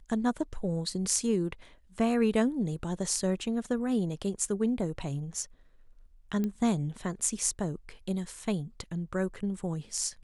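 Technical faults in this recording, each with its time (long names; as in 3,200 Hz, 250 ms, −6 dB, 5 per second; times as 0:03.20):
0:06.44: click −20 dBFS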